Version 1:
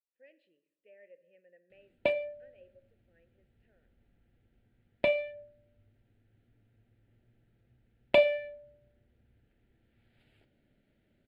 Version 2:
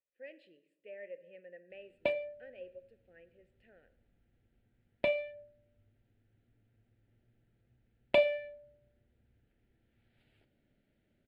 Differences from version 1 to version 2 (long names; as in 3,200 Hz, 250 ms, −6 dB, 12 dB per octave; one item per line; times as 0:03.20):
speech +10.0 dB
background −3.5 dB